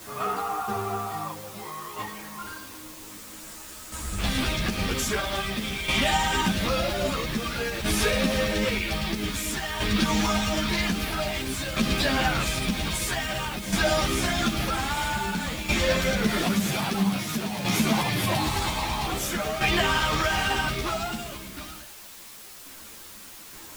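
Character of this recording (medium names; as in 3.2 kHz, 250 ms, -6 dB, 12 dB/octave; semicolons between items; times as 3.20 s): tremolo saw down 0.51 Hz, depth 65%; a quantiser's noise floor 8-bit, dither triangular; a shimmering, thickened sound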